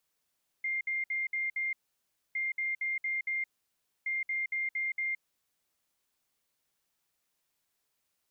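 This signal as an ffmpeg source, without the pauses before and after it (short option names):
-f lavfi -i "aevalsrc='0.0335*sin(2*PI*2110*t)*clip(min(mod(mod(t,1.71),0.23),0.17-mod(mod(t,1.71),0.23))/0.005,0,1)*lt(mod(t,1.71),1.15)':d=5.13:s=44100"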